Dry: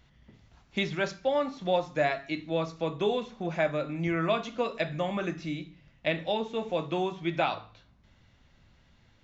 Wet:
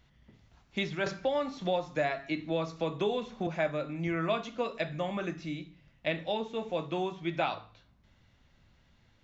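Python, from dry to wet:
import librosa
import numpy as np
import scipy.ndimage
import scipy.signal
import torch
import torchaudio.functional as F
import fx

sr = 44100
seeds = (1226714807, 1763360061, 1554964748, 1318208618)

y = fx.band_squash(x, sr, depth_pct=70, at=(1.06, 3.47))
y = y * 10.0 ** (-3.0 / 20.0)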